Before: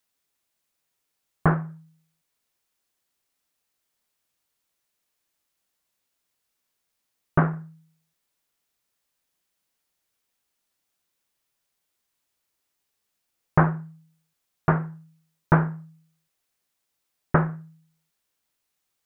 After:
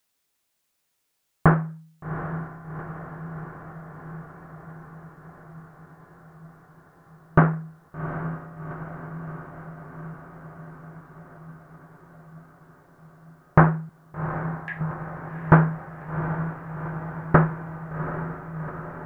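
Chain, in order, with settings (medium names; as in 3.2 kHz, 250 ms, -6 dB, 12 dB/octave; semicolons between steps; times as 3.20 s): 13.89–14.81 s: brick-wall FIR high-pass 1.6 kHz; echo that smears into a reverb 768 ms, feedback 71%, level -10 dB; trim +3.5 dB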